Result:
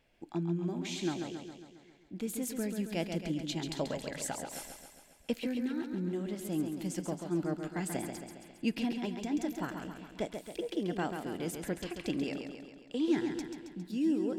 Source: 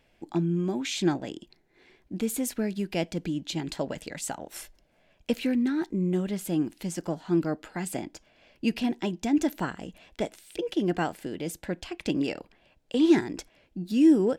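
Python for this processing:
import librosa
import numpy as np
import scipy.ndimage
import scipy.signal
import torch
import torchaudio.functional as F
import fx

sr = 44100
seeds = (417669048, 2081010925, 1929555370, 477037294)

p1 = fx.rider(x, sr, range_db=4, speed_s=0.5)
p2 = p1 + fx.echo_feedback(p1, sr, ms=136, feedback_pct=58, wet_db=-6.5, dry=0)
y = p2 * 10.0 ** (-8.0 / 20.0)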